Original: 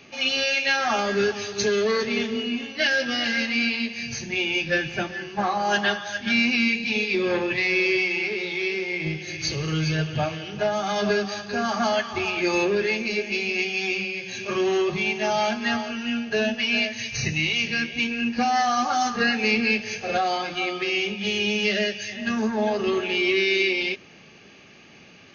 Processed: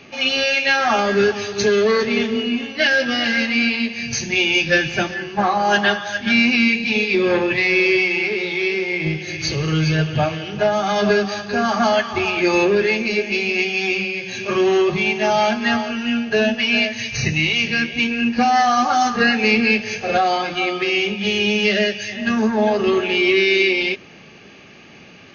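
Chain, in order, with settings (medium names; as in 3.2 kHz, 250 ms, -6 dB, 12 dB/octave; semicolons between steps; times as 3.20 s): treble shelf 4.7 kHz -7.5 dB, from 4.13 s +5.5 dB, from 5.14 s -6 dB; trim +6.5 dB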